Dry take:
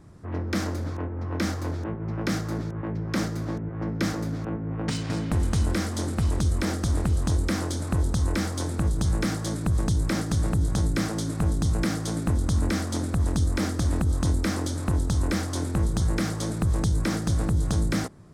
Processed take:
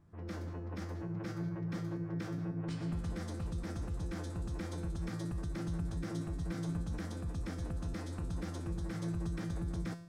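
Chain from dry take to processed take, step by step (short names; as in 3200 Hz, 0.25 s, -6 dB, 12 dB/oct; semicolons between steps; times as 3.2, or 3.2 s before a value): tone controls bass +1 dB, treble -6 dB; limiter -19.5 dBFS, peak gain reduction 4.5 dB; AGC gain up to 3.5 dB; time stretch by phase-locked vocoder 0.55×; resonator 170 Hz, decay 0.59 s, harmonics all, mix 80%; gain -2.5 dB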